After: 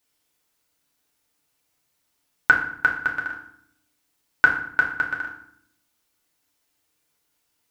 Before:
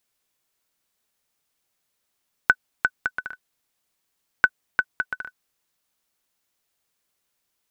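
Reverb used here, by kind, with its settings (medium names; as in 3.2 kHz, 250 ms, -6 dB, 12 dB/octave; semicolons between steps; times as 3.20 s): FDN reverb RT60 0.65 s, low-frequency decay 1.55×, high-frequency decay 0.8×, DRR -1.5 dB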